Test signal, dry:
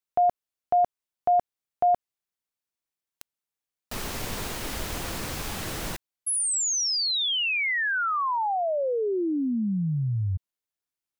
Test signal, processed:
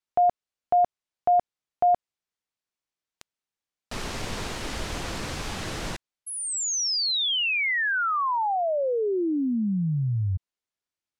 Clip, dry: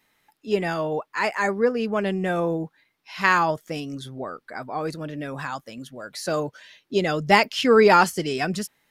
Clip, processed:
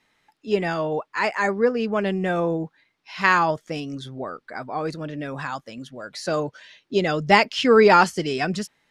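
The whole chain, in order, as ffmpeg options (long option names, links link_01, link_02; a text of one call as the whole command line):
ffmpeg -i in.wav -af "lowpass=7200,volume=1dB" out.wav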